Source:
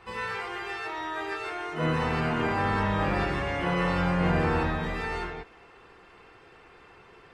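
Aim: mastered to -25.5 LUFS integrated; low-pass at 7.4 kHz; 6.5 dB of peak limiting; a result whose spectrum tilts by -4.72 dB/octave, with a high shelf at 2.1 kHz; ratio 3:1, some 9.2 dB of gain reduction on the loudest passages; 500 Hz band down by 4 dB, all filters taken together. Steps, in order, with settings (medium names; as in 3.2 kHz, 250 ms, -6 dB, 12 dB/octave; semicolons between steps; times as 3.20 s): low-pass 7.4 kHz; peaking EQ 500 Hz -4.5 dB; treble shelf 2.1 kHz -6 dB; compression 3:1, threshold -35 dBFS; trim +14 dB; peak limiter -16.5 dBFS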